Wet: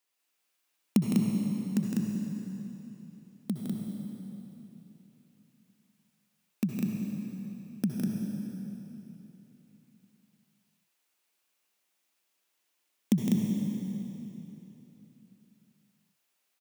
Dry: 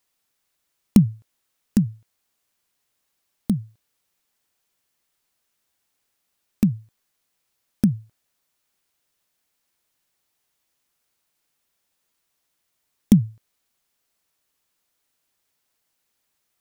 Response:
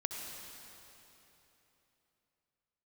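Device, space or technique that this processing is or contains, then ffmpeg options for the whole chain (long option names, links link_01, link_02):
stadium PA: -filter_complex "[0:a]highpass=210,equalizer=frequency=2600:width_type=o:width=0.57:gain=3.5,aecho=1:1:160.3|198.3:0.562|0.708[link_01];[1:a]atrim=start_sample=2205[link_02];[link_01][link_02]afir=irnorm=-1:irlink=0,volume=-6.5dB"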